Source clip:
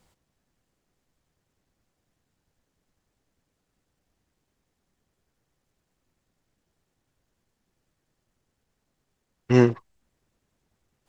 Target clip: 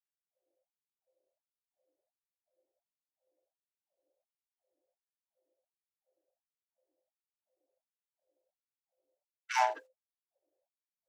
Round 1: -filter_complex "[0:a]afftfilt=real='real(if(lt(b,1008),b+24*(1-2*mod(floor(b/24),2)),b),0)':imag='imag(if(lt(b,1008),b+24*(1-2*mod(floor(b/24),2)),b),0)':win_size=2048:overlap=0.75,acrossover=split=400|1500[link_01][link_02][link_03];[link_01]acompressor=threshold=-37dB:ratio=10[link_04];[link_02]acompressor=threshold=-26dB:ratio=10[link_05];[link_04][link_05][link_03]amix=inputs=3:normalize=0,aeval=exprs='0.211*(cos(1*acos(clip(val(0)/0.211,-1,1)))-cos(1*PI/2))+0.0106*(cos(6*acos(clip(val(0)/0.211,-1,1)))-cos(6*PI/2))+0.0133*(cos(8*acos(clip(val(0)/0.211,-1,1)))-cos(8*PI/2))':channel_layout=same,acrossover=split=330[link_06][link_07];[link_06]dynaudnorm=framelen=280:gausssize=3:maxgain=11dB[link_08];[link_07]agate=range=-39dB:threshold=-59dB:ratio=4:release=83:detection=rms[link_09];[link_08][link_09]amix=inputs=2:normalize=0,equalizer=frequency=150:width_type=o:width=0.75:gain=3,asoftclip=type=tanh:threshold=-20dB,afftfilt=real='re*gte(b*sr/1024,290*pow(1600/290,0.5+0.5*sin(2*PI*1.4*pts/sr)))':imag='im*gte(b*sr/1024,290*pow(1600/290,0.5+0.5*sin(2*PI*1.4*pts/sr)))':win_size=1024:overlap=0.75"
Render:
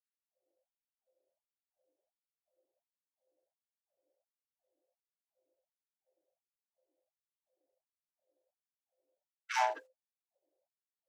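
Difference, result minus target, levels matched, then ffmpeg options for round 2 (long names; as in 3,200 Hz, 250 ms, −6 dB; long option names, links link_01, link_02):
soft clipping: distortion +16 dB
-filter_complex "[0:a]afftfilt=real='real(if(lt(b,1008),b+24*(1-2*mod(floor(b/24),2)),b),0)':imag='imag(if(lt(b,1008),b+24*(1-2*mod(floor(b/24),2)),b),0)':win_size=2048:overlap=0.75,acrossover=split=400|1500[link_01][link_02][link_03];[link_01]acompressor=threshold=-37dB:ratio=10[link_04];[link_02]acompressor=threshold=-26dB:ratio=10[link_05];[link_04][link_05][link_03]amix=inputs=3:normalize=0,aeval=exprs='0.211*(cos(1*acos(clip(val(0)/0.211,-1,1)))-cos(1*PI/2))+0.0106*(cos(6*acos(clip(val(0)/0.211,-1,1)))-cos(6*PI/2))+0.0133*(cos(8*acos(clip(val(0)/0.211,-1,1)))-cos(8*PI/2))':channel_layout=same,acrossover=split=330[link_06][link_07];[link_06]dynaudnorm=framelen=280:gausssize=3:maxgain=11dB[link_08];[link_07]agate=range=-39dB:threshold=-59dB:ratio=4:release=83:detection=rms[link_09];[link_08][link_09]amix=inputs=2:normalize=0,equalizer=frequency=150:width_type=o:width=0.75:gain=3,asoftclip=type=tanh:threshold=-9dB,afftfilt=real='re*gte(b*sr/1024,290*pow(1600/290,0.5+0.5*sin(2*PI*1.4*pts/sr)))':imag='im*gte(b*sr/1024,290*pow(1600/290,0.5+0.5*sin(2*PI*1.4*pts/sr)))':win_size=1024:overlap=0.75"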